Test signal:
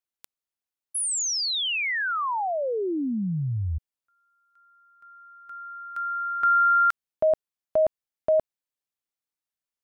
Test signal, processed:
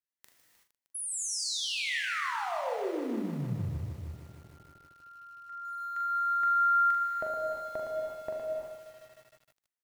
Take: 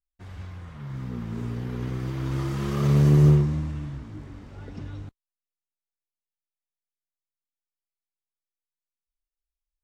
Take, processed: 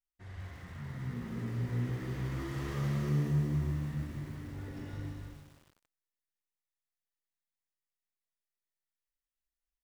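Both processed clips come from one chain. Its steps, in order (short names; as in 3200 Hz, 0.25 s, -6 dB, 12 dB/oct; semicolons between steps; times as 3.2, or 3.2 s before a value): bell 1900 Hz +9 dB 0.24 oct; compressor 2.5:1, threshold -29 dBFS; on a send: early reflections 41 ms -6.5 dB, 75 ms -16 dB; on the sum: non-linear reverb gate 0.4 s flat, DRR -0.5 dB; lo-fi delay 0.154 s, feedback 80%, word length 7-bit, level -13 dB; gain -8.5 dB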